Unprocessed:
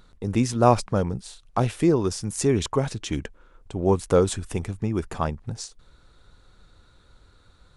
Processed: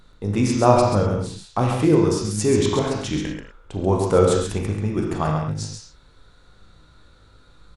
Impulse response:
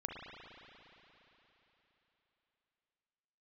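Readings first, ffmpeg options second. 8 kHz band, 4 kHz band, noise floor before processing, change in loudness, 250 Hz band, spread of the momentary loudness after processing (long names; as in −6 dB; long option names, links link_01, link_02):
+2.5 dB, +4.0 dB, −57 dBFS, +4.0 dB, +4.0 dB, 12 LU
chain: -filter_complex "[0:a]aecho=1:1:135:0.531[link_01];[1:a]atrim=start_sample=2205,afade=type=out:start_time=0.27:duration=0.01,atrim=end_sample=12348,asetrate=79380,aresample=44100[link_02];[link_01][link_02]afir=irnorm=-1:irlink=0,volume=9dB"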